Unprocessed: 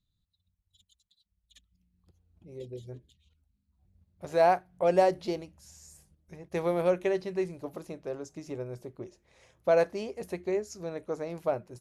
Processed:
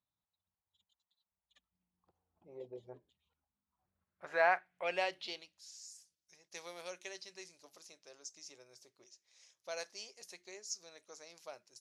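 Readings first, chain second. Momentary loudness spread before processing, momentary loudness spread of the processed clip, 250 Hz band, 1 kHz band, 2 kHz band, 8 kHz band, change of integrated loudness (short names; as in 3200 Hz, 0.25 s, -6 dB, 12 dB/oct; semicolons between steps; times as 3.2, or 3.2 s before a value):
20 LU, 22 LU, -22.0 dB, -8.5 dB, +1.0 dB, n/a, -10.0 dB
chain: band-pass sweep 890 Hz -> 5600 Hz, 3.5–6; gain +6.5 dB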